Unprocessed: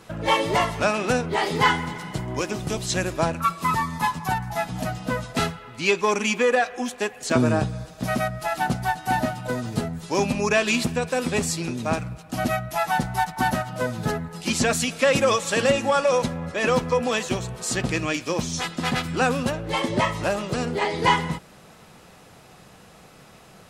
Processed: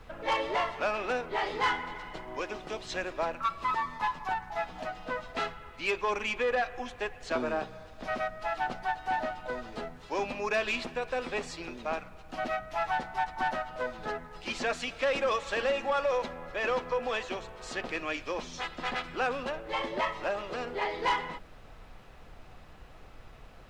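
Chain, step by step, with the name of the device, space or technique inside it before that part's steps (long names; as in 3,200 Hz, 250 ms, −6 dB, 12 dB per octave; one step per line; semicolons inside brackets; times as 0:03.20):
aircraft cabin announcement (band-pass filter 430–3,300 Hz; soft clipping −16 dBFS, distortion −16 dB; brown noise bed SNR 16 dB)
level −5 dB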